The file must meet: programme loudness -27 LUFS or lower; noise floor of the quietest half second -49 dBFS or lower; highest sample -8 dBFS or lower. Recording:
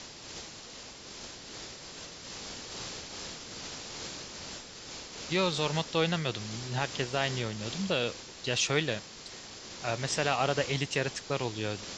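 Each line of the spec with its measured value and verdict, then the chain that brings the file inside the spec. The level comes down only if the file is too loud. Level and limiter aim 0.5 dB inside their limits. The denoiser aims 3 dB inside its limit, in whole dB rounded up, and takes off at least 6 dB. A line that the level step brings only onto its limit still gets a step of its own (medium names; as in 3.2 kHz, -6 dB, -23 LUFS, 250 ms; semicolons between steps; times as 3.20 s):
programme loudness -33.0 LUFS: pass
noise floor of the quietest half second -47 dBFS: fail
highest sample -12.5 dBFS: pass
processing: noise reduction 6 dB, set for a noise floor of -47 dBFS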